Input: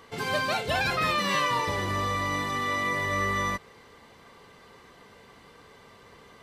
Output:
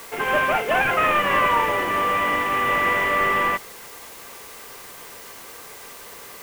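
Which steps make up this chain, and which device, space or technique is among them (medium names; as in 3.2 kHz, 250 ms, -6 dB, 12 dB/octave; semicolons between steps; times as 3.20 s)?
army field radio (band-pass 370–3100 Hz; CVSD coder 16 kbps; white noise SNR 19 dB); trim +9 dB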